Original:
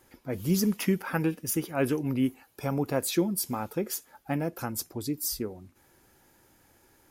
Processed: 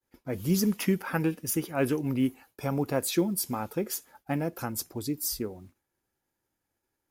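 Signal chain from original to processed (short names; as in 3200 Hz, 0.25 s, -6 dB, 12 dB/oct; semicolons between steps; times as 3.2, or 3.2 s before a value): companded quantiser 8-bit; expander -48 dBFS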